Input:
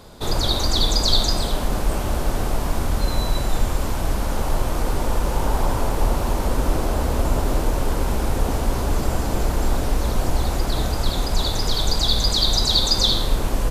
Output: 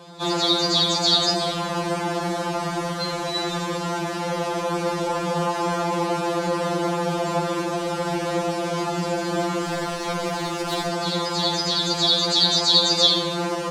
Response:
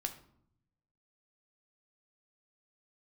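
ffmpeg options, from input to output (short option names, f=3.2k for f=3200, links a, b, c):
-filter_complex "[0:a]highpass=150,lowpass=6.1k,asettb=1/sr,asplit=3[a][b][c];[a]atrim=end=9.654[d];[b]atrim=start=9.65:end=10.89,asetpts=PTS-STARTPTS,afade=t=in:d=0.004:c=qsin,afade=t=out:st=1.236:d=0.004:c=qsin,aeval=exprs='0.168*(cos(1*acos(clip(val(0)/0.168,-1,1)))-cos(1*PI/2))+0.0237*(cos(7*acos(clip(val(0)/0.168,-1,1)))-cos(7*PI/2))':c=same[e];[c]atrim=start=10.886[f];[d][e]acrossfade=d=0.004:c1=hsin:c2=qsin[g];[g][f]acrossfade=d=0.004:c1=qsin:c2=hsin,afftfilt=real='re*2.83*eq(mod(b,8),0)':imag='im*2.83*eq(mod(b,8),0)':win_size=2048:overlap=0.75,volume=5.5dB"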